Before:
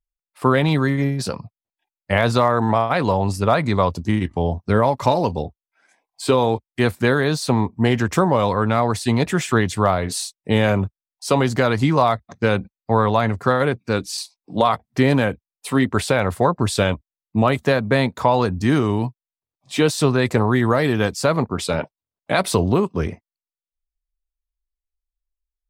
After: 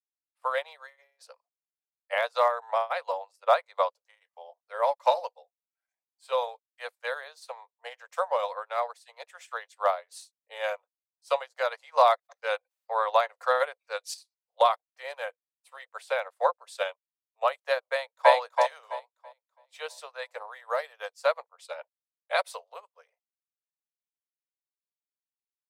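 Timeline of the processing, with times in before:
0:11.72–0:14.14: envelope flattener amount 50%
0:17.91–0:18.33: delay throw 330 ms, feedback 55%, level −1.5 dB
whole clip: Butterworth high-pass 490 Hz 96 dB per octave; expander for the loud parts 2.5 to 1, over −35 dBFS

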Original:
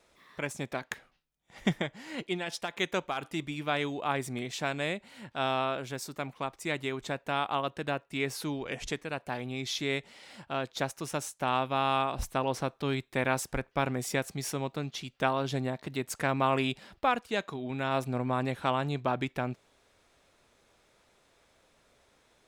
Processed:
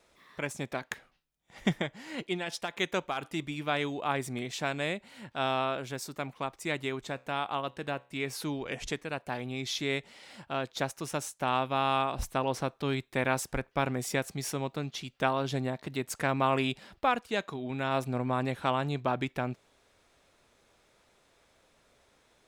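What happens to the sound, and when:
0:07.00–0:08.33: tuned comb filter 65 Hz, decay 0.43 s, mix 30%

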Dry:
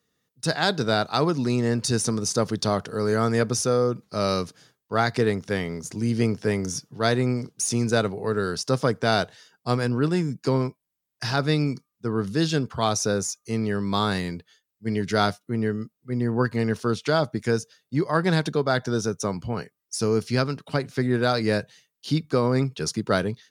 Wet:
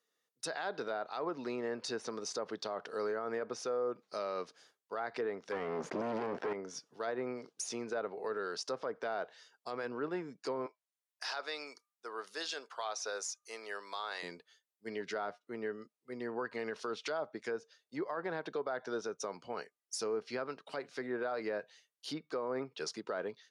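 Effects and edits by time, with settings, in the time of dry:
0:05.52–0:06.53: leveller curve on the samples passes 5
0:10.66–0:14.23: high-pass filter 640 Hz
0:16.20–0:17.18: high-shelf EQ 3,200 Hz +9 dB
whole clip: treble cut that deepens with the level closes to 1,600 Hz, closed at −17.5 dBFS; Chebyshev high-pass filter 510 Hz, order 2; brickwall limiter −21.5 dBFS; level −6.5 dB

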